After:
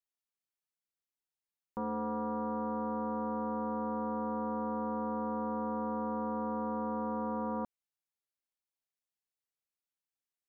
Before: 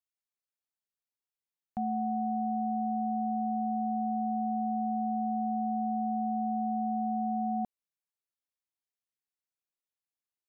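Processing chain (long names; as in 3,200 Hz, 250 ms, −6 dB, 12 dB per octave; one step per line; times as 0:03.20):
highs frequency-modulated by the lows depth 0.41 ms
level −3.5 dB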